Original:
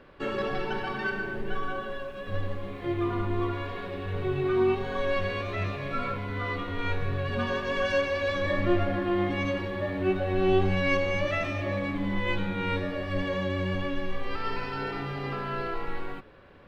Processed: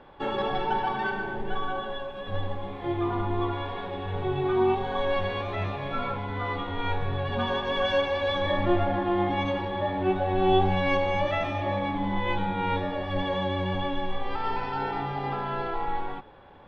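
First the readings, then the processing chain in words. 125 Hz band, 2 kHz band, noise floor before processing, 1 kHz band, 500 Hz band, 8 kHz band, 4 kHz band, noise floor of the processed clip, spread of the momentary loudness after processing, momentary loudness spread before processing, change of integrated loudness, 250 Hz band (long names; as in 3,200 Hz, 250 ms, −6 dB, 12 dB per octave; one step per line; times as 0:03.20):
0.0 dB, −1.0 dB, −39 dBFS, +6.5 dB, +1.0 dB, can't be measured, +4.0 dB, −38 dBFS, 8 LU, 9 LU, +1.5 dB, 0.0 dB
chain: high-shelf EQ 4,500 Hz −10.5 dB
hollow resonant body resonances 840/3,400 Hz, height 16 dB, ringing for 30 ms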